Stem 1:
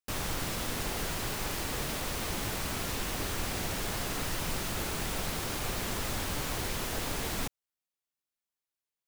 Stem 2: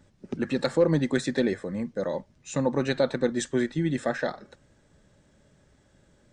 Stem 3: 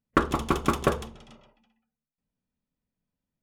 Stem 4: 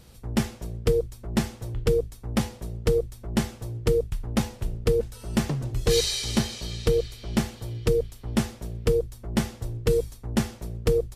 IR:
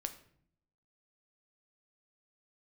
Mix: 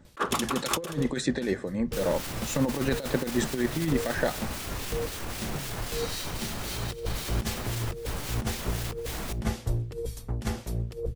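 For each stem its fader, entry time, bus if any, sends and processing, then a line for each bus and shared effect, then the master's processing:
0.0 dB, 1.85 s, send -4 dB, peak limiter -30.5 dBFS, peak gain reduction 10 dB
-0.5 dB, 0.00 s, send -12.5 dB, none
-0.5 dB, 0.00 s, no send, high-pass 490 Hz; treble shelf 2.2 kHz +11.5 dB; three bands expanded up and down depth 100%
+1.5 dB, 0.05 s, send -16 dB, auto duck -23 dB, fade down 0.25 s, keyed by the second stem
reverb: on, RT60 0.60 s, pre-delay 7 ms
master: compressor with a negative ratio -24 dBFS, ratio -0.5; harmonic tremolo 3.8 Hz, depth 50%, crossover 1.9 kHz

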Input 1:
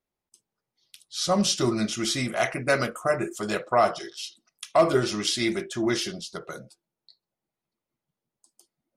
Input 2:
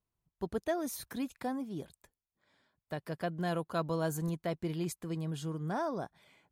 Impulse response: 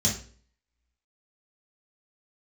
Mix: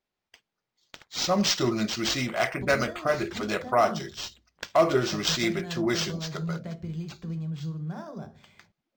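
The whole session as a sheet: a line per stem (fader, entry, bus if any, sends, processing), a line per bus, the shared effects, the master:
-1.5 dB, 0.00 s, no send, none
+1.5 dB, 2.20 s, send -16 dB, low-pass 10 kHz; bass shelf 140 Hz +7.5 dB; compression 5:1, threshold -39 dBFS, peak gain reduction 11.5 dB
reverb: on, RT60 0.45 s, pre-delay 3 ms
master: treble shelf 3.8 kHz +8 dB; decimation joined by straight lines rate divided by 4×

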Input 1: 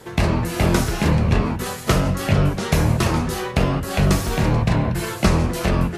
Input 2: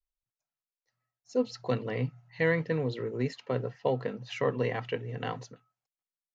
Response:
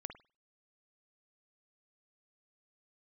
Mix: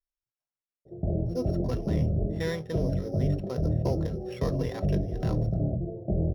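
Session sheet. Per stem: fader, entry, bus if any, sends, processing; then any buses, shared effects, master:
-7.0 dB, 0.85 s, no send, steep low-pass 720 Hz 96 dB/octave; peak limiter -10.5 dBFS, peak gain reduction 5.5 dB; comb of notches 240 Hz
-4.5 dB, 0.00 s, no send, sorted samples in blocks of 8 samples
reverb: none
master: low-pass 2.7 kHz 6 dB/octave

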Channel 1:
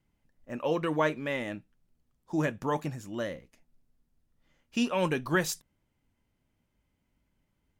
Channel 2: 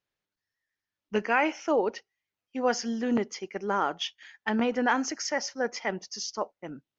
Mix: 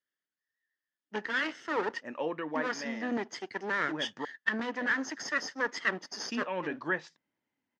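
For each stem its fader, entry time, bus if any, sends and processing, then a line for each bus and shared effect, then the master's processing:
-8.0 dB, 1.55 s, muted 4.25–4.80 s, no send, low-pass that closes with the level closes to 2.4 kHz, closed at -24 dBFS
-3.0 dB, 0.00 s, no send, comb filter that takes the minimum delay 0.62 ms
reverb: none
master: gain riding 0.5 s; cabinet simulation 250–6400 Hz, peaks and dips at 270 Hz +4 dB, 890 Hz +3 dB, 1.8 kHz +8 dB

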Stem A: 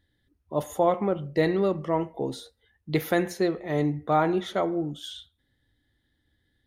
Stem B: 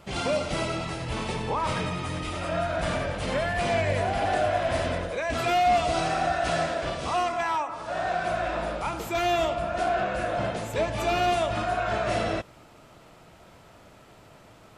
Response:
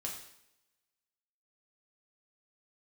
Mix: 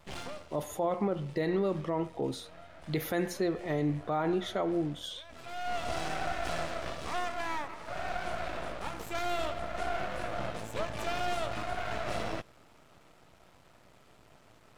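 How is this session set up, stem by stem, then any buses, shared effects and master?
-2.0 dB, 0.00 s, no send, none
-4.0 dB, 0.00 s, no send, half-wave rectifier; auto duck -16 dB, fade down 0.40 s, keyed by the first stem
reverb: none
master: peak limiter -21 dBFS, peak gain reduction 8.5 dB

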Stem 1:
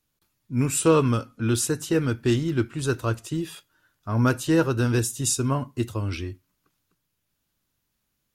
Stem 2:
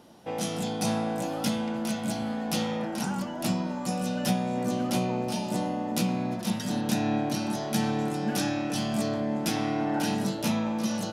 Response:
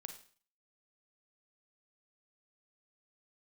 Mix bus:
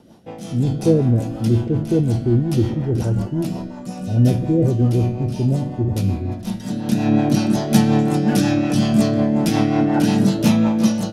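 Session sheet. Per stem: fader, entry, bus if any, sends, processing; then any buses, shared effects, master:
-5.5 dB, 0.00 s, no send, Chebyshev low-pass 760 Hz, order 10; decay stretcher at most 77 dB/s
+1.0 dB, 0.00 s, send -8 dB, auto duck -17 dB, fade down 0.35 s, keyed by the first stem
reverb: on, RT60 0.45 s, pre-delay 35 ms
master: level rider gain up to 6.5 dB; rotary cabinet horn 5.5 Hz; bass shelf 290 Hz +9 dB

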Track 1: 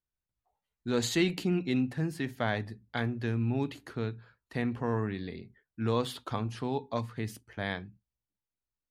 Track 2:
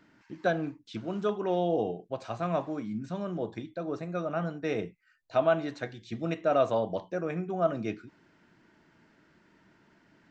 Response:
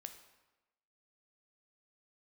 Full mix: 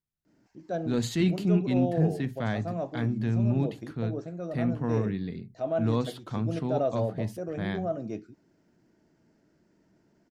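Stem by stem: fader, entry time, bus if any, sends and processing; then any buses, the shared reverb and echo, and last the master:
-3.0 dB, 0.00 s, no send, peaking EQ 160 Hz +12 dB 1.6 oct
-1.0 dB, 0.25 s, no send, high-order bell 1.9 kHz -11 dB 2.4 oct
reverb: none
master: transient shaper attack -5 dB, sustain -1 dB

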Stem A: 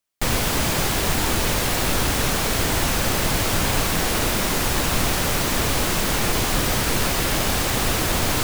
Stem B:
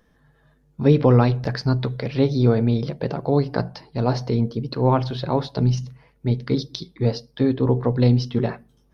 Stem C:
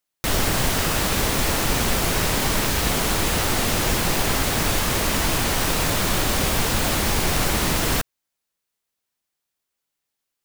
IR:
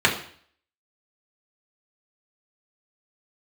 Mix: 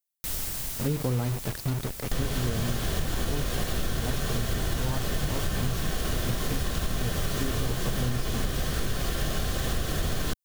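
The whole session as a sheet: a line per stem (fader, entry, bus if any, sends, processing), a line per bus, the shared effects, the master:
-7.0 dB, 1.90 s, send -21.5 dB, band-stop 880 Hz, Q 5.3
-11.0 dB, 0.00 s, no send, bit crusher 4-bit
-5.0 dB, 0.00 s, no send, pre-emphasis filter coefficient 0.8; auto duck -11 dB, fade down 1.65 s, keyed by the second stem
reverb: on, RT60 0.55 s, pre-delay 3 ms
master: bass shelf 130 Hz +11.5 dB; compression 5:1, threshold -24 dBFS, peak gain reduction 10 dB

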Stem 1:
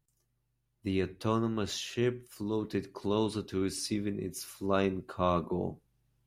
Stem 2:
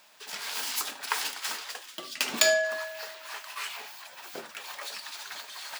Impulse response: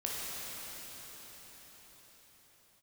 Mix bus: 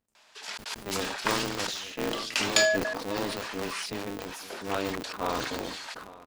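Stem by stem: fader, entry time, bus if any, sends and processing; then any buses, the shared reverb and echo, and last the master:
-1.0 dB, 0.00 s, no send, echo send -19.5 dB, treble shelf 7 kHz -6 dB; polarity switched at an audio rate 100 Hz
0.0 dB, 0.15 s, no send, no echo send, low-pass 7.6 kHz 12 dB/octave; trance gate "xxxxx.x..xxxx" 178 bpm -60 dB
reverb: none
echo: delay 871 ms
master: bass shelf 160 Hz -11 dB; decay stretcher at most 39 dB/s

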